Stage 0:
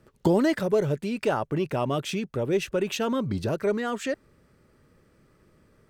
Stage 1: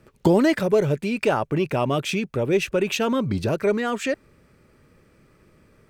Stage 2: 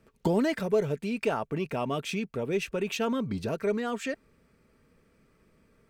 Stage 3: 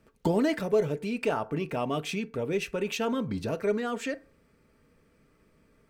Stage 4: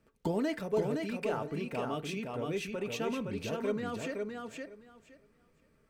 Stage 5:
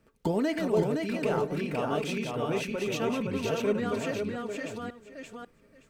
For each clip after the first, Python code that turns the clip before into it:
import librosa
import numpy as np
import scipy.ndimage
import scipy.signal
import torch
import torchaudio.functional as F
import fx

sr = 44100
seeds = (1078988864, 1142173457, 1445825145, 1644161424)

y1 = fx.peak_eq(x, sr, hz=2400.0, db=6.0, octaves=0.27)
y1 = y1 * 10.0 ** (4.0 / 20.0)
y2 = y1 + 0.33 * np.pad(y1, (int(4.4 * sr / 1000.0), 0))[:len(y1)]
y2 = y2 * 10.0 ** (-8.0 / 20.0)
y3 = fx.rev_fdn(y2, sr, rt60_s=0.41, lf_ratio=0.75, hf_ratio=0.5, size_ms=20.0, drr_db=12.0)
y4 = fx.echo_feedback(y3, sr, ms=516, feedback_pct=17, wet_db=-4.0)
y4 = y4 * 10.0 ** (-6.5 / 20.0)
y5 = fx.reverse_delay(y4, sr, ms=545, wet_db=-4.5)
y5 = y5 * 10.0 ** (4.0 / 20.0)